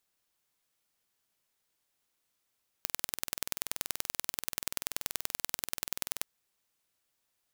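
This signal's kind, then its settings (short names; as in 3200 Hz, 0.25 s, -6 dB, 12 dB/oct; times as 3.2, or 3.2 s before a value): pulse train 20.8/s, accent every 2, -3 dBFS 3.39 s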